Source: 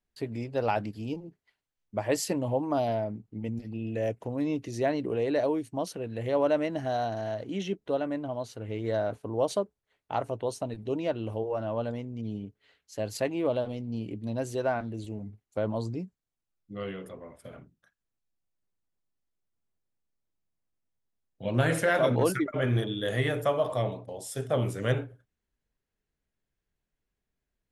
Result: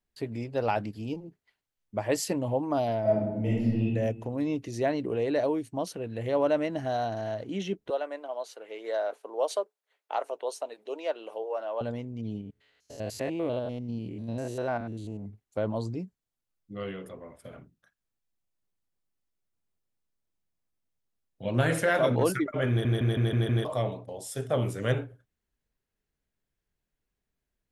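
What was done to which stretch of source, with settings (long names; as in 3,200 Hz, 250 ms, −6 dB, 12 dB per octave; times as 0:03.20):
0:03.01–0:03.83: thrown reverb, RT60 1.1 s, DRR −8.5 dB
0:07.90–0:11.81: high-pass filter 440 Hz 24 dB per octave
0:12.41–0:15.26: spectrum averaged block by block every 100 ms
0:22.69: stutter in place 0.16 s, 6 plays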